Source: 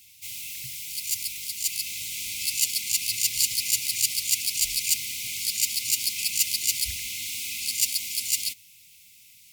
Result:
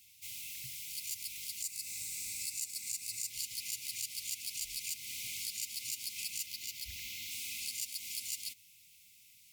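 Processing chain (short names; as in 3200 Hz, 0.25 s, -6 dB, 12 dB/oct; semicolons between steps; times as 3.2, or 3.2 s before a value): 1.62–3.3 thirty-one-band EQ 800 Hz +11 dB, 3150 Hz -12 dB, 8000 Hz +7 dB; compressor 6:1, threshold -28 dBFS, peak gain reduction 12 dB; 6.46–7.31 bell 9100 Hz -7 dB 0.8 oct; gain -8 dB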